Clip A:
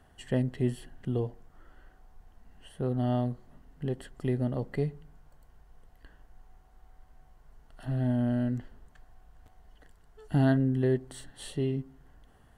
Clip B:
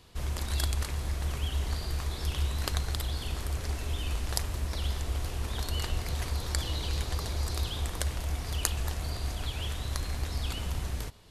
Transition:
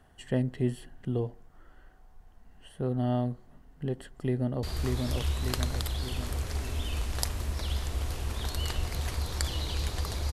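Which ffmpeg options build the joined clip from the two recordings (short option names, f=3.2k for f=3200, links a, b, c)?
-filter_complex "[0:a]apad=whole_dur=10.32,atrim=end=10.32,atrim=end=4.632[a];[1:a]atrim=start=1.768:end=7.46[b];[a][b]acrossfade=d=0.004:c1=hsin:c2=hsin,asplit=2[c][d];[d]afade=t=in:st=4.19:d=0.01,afade=t=out:st=4.63:d=0.01,aecho=0:1:590|1180|1770|2360|2950|3540|4130|4720:0.707946|0.38937|0.214154|0.117784|0.0647815|0.0356298|0.0195964|0.010778[e];[c][e]amix=inputs=2:normalize=0"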